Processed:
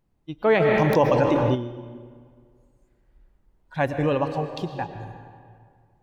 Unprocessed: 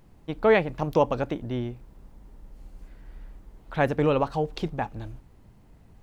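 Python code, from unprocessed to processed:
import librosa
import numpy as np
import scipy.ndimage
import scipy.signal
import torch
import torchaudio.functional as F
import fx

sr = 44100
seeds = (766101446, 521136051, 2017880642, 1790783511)

y = fx.noise_reduce_blind(x, sr, reduce_db=16)
y = fx.rev_freeverb(y, sr, rt60_s=2.1, hf_ratio=0.65, predelay_ms=75, drr_db=7.5)
y = fx.env_flatten(y, sr, amount_pct=70, at=(0.59, 1.54), fade=0.02)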